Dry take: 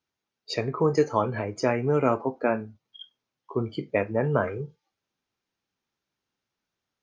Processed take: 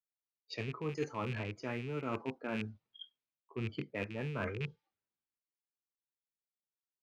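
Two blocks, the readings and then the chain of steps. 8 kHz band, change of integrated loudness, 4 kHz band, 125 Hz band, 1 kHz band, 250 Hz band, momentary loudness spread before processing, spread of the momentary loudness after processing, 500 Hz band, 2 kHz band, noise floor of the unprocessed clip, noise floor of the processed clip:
no reading, -13.0 dB, -8.0 dB, -9.5 dB, -15.0 dB, -11.5 dB, 10 LU, 9 LU, -16.0 dB, -8.5 dB, under -85 dBFS, under -85 dBFS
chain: rattle on loud lows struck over -32 dBFS, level -26 dBFS; level-controlled noise filter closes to 2.3 kHz, open at -19 dBFS; dynamic bell 650 Hz, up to -8 dB, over -37 dBFS, Q 1; reverse; compression 6:1, threshold -35 dBFS, peak gain reduction 14.5 dB; reverse; three bands expanded up and down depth 70%

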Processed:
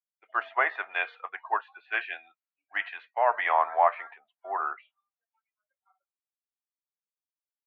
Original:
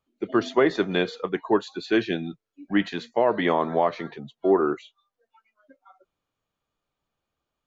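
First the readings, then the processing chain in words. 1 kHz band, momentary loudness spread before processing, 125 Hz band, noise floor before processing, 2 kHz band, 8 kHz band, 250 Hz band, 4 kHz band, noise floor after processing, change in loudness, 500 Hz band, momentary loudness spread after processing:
+2.0 dB, 9 LU, under -40 dB, -85 dBFS, +2.0 dB, no reading, under -30 dB, -11.0 dB, under -85 dBFS, -4.0 dB, -10.5 dB, 16 LU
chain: Chebyshev band-pass 720–2600 Hz, order 3; peaking EQ 1.7 kHz +2 dB; three bands expanded up and down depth 70%

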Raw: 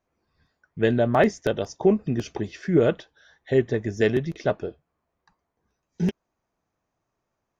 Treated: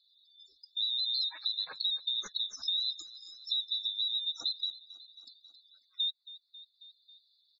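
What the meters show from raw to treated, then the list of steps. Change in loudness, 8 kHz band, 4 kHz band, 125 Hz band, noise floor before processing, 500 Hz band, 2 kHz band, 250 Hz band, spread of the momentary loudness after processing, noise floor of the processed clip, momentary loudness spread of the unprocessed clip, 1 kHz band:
-7.5 dB, no reading, +14.0 dB, under -40 dB, -80 dBFS, under -40 dB, under -20 dB, under -40 dB, 19 LU, -74 dBFS, 10 LU, under -25 dB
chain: split-band scrambler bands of 4 kHz; spectral gate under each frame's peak -10 dB strong; in parallel at +2.5 dB: peak limiter -21.5 dBFS, peak gain reduction 11.5 dB; on the sum: compression, threshold -21 dBFS, peak gain reduction 9.5 dB; frequency shift -500 Hz; on a send: feedback delay 271 ms, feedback 49%, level -20 dB; on the sum: three bands compressed up and down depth 40%; trim -8.5 dB

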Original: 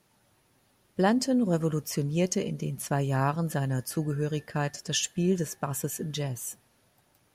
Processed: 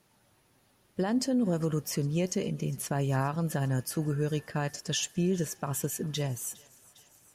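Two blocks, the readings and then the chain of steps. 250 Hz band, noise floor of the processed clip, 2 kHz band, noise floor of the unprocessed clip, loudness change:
-2.0 dB, -67 dBFS, -3.0 dB, -67 dBFS, -2.0 dB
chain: peak limiter -20 dBFS, peak gain reduction 10 dB; on a send: thinning echo 406 ms, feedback 78%, high-pass 1 kHz, level -22 dB

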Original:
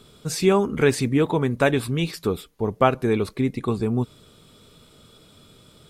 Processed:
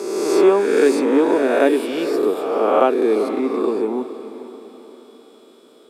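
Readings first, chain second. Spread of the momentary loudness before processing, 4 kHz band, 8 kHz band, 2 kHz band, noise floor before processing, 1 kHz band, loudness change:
8 LU, -0.5 dB, no reading, +1.5 dB, -53 dBFS, +4.5 dB, +5.0 dB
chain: reverse spectral sustain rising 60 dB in 1.56 s; steep high-pass 280 Hz 36 dB/octave; tilt shelf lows +7 dB, about 780 Hz; echo that smears into a reverb 470 ms, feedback 44%, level -13 dB

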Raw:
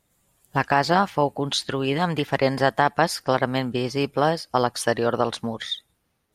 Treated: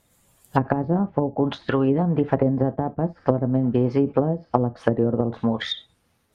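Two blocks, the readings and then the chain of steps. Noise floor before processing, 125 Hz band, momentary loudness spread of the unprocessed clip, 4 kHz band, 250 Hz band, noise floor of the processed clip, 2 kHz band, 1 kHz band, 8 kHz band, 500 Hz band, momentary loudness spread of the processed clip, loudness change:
-72 dBFS, +5.0 dB, 7 LU, -7.0 dB, +5.5 dB, -66 dBFS, -10.0 dB, -6.0 dB, under -20 dB, 0.0 dB, 5 LU, +0.5 dB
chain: gated-style reverb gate 90 ms falling, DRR 9.5 dB; low-pass that closes with the level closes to 310 Hz, closed at -17.5 dBFS; trim +5 dB

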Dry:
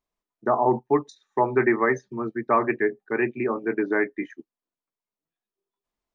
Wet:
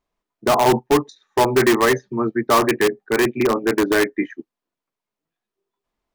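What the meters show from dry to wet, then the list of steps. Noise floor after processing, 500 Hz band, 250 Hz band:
under -85 dBFS, +5.5 dB, +6.0 dB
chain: treble shelf 5.4 kHz -10.5 dB; in parallel at -5.5 dB: integer overflow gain 17.5 dB; on the sum: trim +4.5 dB

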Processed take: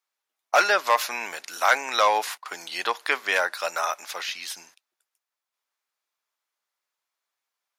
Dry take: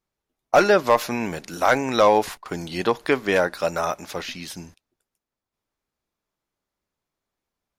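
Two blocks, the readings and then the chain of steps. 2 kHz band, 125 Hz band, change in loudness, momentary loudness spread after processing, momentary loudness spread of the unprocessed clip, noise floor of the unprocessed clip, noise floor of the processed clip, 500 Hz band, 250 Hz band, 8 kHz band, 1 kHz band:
+2.0 dB, under -25 dB, -3.0 dB, 13 LU, 15 LU, under -85 dBFS, under -85 dBFS, -8.5 dB, -19.0 dB, +2.5 dB, -1.0 dB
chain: high-pass 1 kHz 12 dB/octave; trim +2.5 dB

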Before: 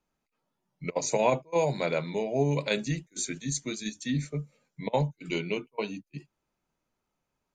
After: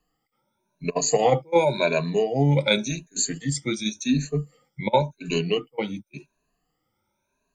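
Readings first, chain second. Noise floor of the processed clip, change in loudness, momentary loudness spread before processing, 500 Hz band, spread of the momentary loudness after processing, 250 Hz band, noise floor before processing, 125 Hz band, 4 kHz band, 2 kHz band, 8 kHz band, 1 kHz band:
-77 dBFS, +6.5 dB, 12 LU, +6.0 dB, 11 LU, +6.5 dB, -83 dBFS, +6.0 dB, +9.0 dB, +6.0 dB, +6.5 dB, +6.5 dB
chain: drifting ripple filter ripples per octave 1.5, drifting +0.91 Hz, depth 22 dB; trim +2 dB

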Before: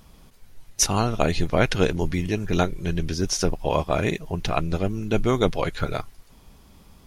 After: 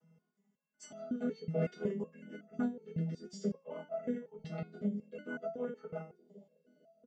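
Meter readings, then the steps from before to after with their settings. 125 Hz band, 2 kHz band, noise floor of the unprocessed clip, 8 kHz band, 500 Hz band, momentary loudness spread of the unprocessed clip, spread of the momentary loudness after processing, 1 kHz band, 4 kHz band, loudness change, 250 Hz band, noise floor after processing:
-16.5 dB, -19.5 dB, -52 dBFS, -31.0 dB, -15.0 dB, 7 LU, 11 LU, -23.5 dB, -29.0 dB, -15.0 dB, -11.5 dB, -82 dBFS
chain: vocoder on a held chord major triad, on E3; bass shelf 140 Hz -6 dB; band-stop 2.4 kHz, Q 17; comb 4.7 ms, depth 63%; dynamic bell 450 Hz, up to +6 dB, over -34 dBFS, Q 0.87; LFO notch square 0.57 Hz 970–4100 Hz; on a send: bucket-brigade echo 458 ms, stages 2048, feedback 68%, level -19.5 dB; on the sum: resonator arpeggio 5.4 Hz 160–670 Hz; trim -1.5 dB

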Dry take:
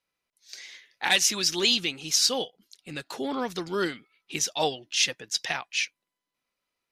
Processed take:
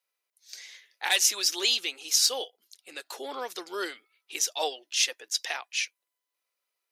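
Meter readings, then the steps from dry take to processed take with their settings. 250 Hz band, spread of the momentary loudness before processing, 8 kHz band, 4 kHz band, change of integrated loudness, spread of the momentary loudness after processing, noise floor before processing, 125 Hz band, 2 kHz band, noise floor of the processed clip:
-12.5 dB, 18 LU, +0.5 dB, -1.5 dB, -1.0 dB, 20 LU, under -85 dBFS, under -30 dB, -3.0 dB, under -85 dBFS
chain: high-pass 390 Hz 24 dB/octave; treble shelf 8.4 kHz +11.5 dB; trim -3.5 dB

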